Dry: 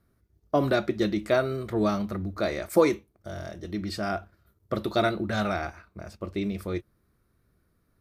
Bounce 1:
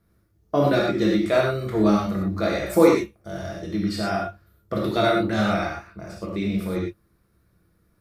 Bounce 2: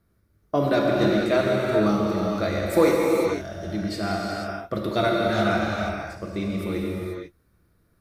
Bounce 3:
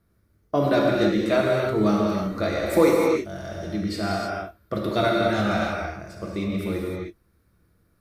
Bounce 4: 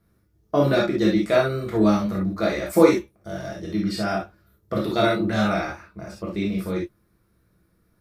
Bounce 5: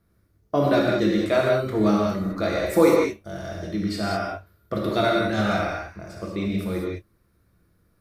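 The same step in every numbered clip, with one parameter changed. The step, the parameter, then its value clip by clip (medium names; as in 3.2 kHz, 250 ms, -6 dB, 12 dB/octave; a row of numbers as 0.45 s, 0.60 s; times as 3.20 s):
gated-style reverb, gate: 140 ms, 520 ms, 340 ms, 90 ms, 230 ms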